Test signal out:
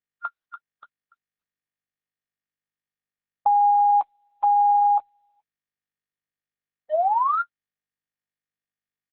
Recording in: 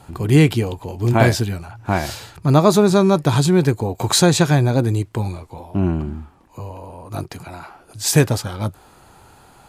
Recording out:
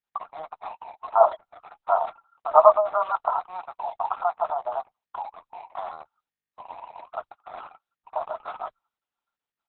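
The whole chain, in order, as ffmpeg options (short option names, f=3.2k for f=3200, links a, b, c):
-filter_complex "[0:a]afftfilt=real='re*between(b*sr/4096,610,1400)':imag='im*between(b*sr/4096,610,1400)':win_size=4096:overlap=0.75,acrossover=split=1000[a][b];[a]aeval=exprs='val(0)*gte(abs(val(0)),0.00708)':c=same[c];[c][b]amix=inputs=2:normalize=0,agate=range=-29dB:threshold=-56dB:ratio=16:detection=peak,anlmdn=0.251,asplit=2[d][e];[e]adelay=13,volume=-10dB[f];[d][f]amix=inputs=2:normalize=0,volume=3.5dB" -ar 48000 -c:a libopus -b:a 6k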